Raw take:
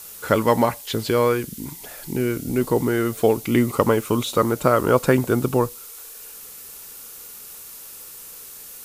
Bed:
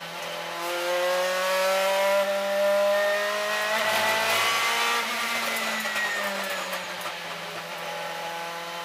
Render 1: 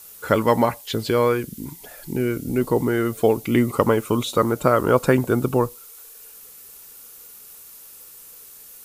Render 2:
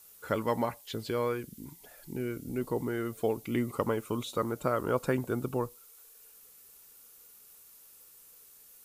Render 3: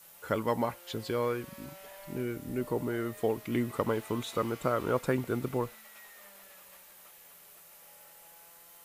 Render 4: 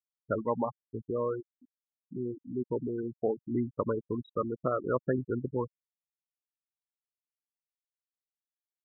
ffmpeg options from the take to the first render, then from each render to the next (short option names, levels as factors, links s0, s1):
-af "afftdn=nr=6:nf=-40"
-af "volume=0.251"
-filter_complex "[1:a]volume=0.0422[s0];[0:a][s0]amix=inputs=2:normalize=0"
-af "afftfilt=real='re*gte(hypot(re,im),0.0794)':imag='im*gte(hypot(re,im),0.0794)':win_size=1024:overlap=0.75"